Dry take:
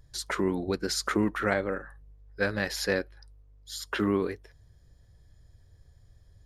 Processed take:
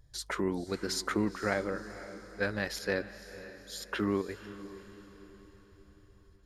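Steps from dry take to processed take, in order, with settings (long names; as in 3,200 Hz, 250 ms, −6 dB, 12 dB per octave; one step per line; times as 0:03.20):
square-wave tremolo 1.4 Hz, depth 60%, duty 90%
feedback delay with all-pass diffusion 498 ms, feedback 48%, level −14 dB
level −4 dB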